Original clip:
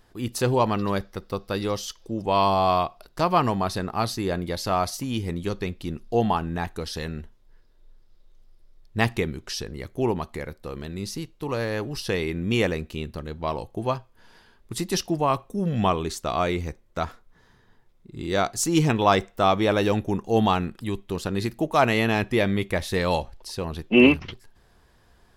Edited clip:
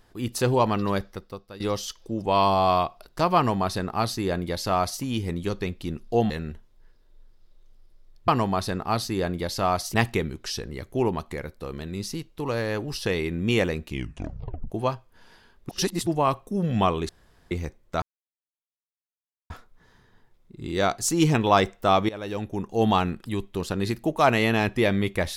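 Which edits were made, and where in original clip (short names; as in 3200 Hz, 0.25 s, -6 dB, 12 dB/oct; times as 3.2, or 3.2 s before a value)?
1.08–1.6 fade out quadratic, to -15 dB
3.36–5.02 copy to 8.97
6.3–6.99 cut
12.88 tape stop 0.85 s
14.72–15.1 reverse
16.12–16.54 room tone
17.05 insert silence 1.48 s
19.64–20.5 fade in, from -19 dB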